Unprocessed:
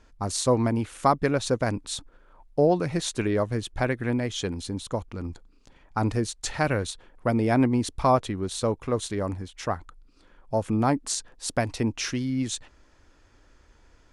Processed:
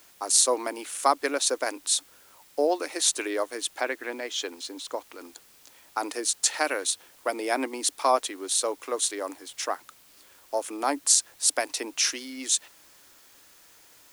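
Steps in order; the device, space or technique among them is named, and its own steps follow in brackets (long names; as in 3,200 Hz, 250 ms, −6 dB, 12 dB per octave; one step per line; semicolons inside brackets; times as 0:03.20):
elliptic high-pass filter 280 Hz
0:03.81–0:05.19: high-frequency loss of the air 98 metres
turntable without a phono preamp (RIAA equalisation recording; white noise bed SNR 27 dB)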